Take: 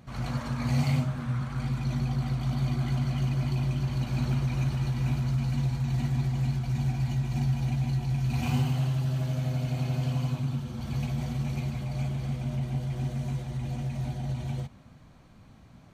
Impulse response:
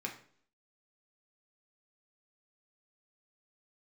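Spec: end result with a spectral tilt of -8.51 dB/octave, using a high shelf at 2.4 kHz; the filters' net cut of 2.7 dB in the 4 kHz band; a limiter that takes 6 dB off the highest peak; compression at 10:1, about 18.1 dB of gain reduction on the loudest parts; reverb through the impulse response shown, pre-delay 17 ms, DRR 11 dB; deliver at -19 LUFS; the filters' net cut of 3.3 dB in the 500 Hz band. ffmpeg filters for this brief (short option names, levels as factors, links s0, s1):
-filter_complex "[0:a]equalizer=f=500:t=o:g=-5,highshelf=f=2400:g=6,equalizer=f=4000:t=o:g=-9,acompressor=threshold=0.00794:ratio=10,alimiter=level_in=5.96:limit=0.0631:level=0:latency=1,volume=0.168,asplit=2[s0][s1];[1:a]atrim=start_sample=2205,adelay=17[s2];[s1][s2]afir=irnorm=-1:irlink=0,volume=0.237[s3];[s0][s3]amix=inputs=2:normalize=0,volume=22.4"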